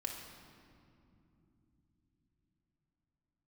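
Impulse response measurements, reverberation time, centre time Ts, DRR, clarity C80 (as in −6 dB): non-exponential decay, 60 ms, 0.0 dB, 5.5 dB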